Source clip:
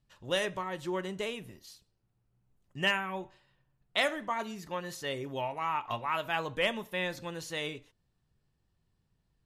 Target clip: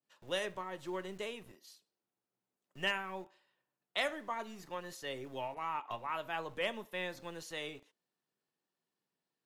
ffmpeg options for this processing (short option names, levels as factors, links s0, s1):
-filter_complex "[0:a]acrossover=split=230|430|4000[s0][s1][s2][s3];[s0]acrusher=bits=6:dc=4:mix=0:aa=0.000001[s4];[s4][s1][s2][s3]amix=inputs=4:normalize=0,adynamicequalizer=threshold=0.00794:dfrequency=1600:dqfactor=0.7:tfrequency=1600:tqfactor=0.7:attack=5:release=100:ratio=0.375:range=2:mode=cutabove:tftype=highshelf,volume=0.531"